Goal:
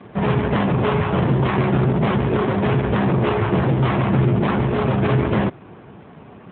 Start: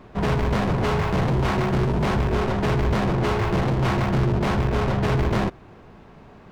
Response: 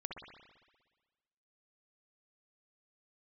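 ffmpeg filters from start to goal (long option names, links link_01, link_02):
-filter_complex "[0:a]asplit=2[link_01][link_02];[link_02]asoftclip=type=tanh:threshold=-26dB,volume=-5.5dB[link_03];[link_01][link_03]amix=inputs=2:normalize=0,volume=3.5dB" -ar 8000 -c:a libopencore_amrnb -b:a 7400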